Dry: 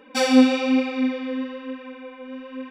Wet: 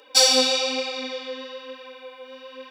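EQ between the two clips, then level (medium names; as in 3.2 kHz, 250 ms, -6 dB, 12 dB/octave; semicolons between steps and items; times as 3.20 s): high-pass 410 Hz 24 dB/octave; resonant high shelf 3.1 kHz +11.5 dB, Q 1.5; 0.0 dB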